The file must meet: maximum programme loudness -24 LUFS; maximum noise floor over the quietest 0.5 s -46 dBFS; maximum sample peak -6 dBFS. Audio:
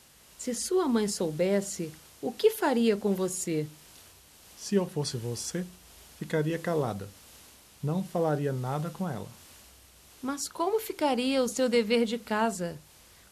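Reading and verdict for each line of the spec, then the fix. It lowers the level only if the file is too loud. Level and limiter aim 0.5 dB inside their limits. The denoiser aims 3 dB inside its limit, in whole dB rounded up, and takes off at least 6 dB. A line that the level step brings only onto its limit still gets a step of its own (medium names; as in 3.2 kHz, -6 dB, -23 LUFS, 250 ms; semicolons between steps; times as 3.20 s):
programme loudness -29.5 LUFS: pass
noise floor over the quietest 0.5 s -56 dBFS: pass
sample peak -11.5 dBFS: pass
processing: none needed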